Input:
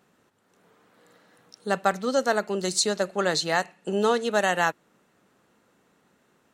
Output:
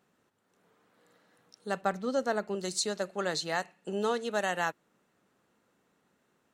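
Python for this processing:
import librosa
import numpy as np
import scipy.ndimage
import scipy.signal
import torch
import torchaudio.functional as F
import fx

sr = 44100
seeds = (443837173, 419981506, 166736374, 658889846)

y = fx.tilt_eq(x, sr, slope=-1.5, at=(1.81, 2.55))
y = y * 10.0 ** (-7.5 / 20.0)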